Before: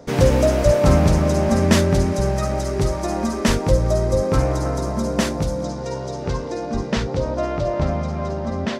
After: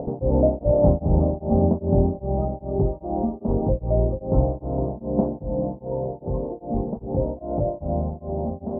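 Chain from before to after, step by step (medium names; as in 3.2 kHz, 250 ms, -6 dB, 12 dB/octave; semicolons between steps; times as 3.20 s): upward compressor, threshold -20 dBFS; elliptic low-pass 820 Hz, stop band 60 dB; reverberation RT60 3.0 s, pre-delay 78 ms, DRR 12.5 dB; tremolo of two beating tones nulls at 2.5 Hz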